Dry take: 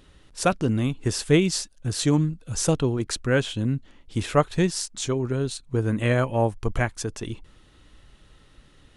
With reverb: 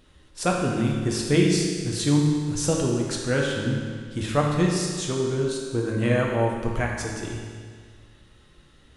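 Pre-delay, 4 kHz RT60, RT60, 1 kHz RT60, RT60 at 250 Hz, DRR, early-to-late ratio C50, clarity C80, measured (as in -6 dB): 6 ms, 1.8 s, 1.9 s, 1.9 s, 1.9 s, -1.5 dB, 1.5 dB, 3.0 dB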